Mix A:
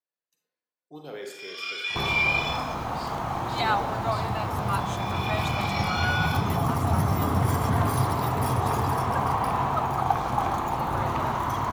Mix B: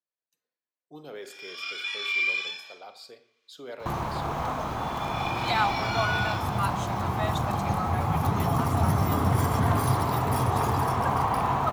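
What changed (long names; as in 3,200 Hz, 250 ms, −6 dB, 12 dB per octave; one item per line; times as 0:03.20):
speech: send −10.5 dB
first sound: send −6.0 dB
second sound: entry +1.90 s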